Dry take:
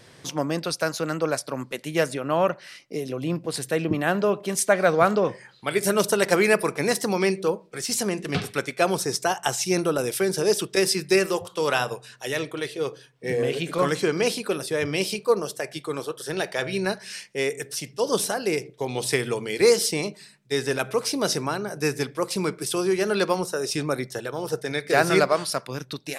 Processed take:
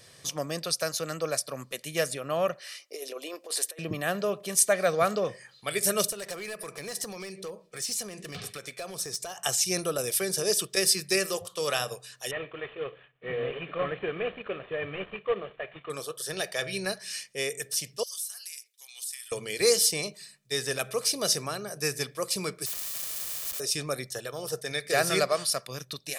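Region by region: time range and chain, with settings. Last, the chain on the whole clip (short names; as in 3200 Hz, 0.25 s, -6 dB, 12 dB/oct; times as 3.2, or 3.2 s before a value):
2.6–3.79 inverse Chebyshev high-pass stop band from 170 Hz + negative-ratio compressor -31 dBFS, ratio -0.5
6.07–9.38 high shelf 11000 Hz -5 dB + compressor 4:1, threshold -29 dBFS + hard clip -25.5 dBFS
12.31–15.9 CVSD 16 kbps + low shelf 160 Hz -5 dB
18.03–19.32 HPF 1200 Hz + differentiator + compressor 2.5:1, threshold -39 dBFS
22.66–23.6 Chebyshev high-pass 310 Hz + Schmitt trigger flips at -39 dBFS + spectral compressor 10:1
whole clip: high shelf 3500 Hz +11.5 dB; comb 1.7 ms, depth 41%; dynamic EQ 1000 Hz, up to -4 dB, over -38 dBFS, Q 4.2; gain -7.5 dB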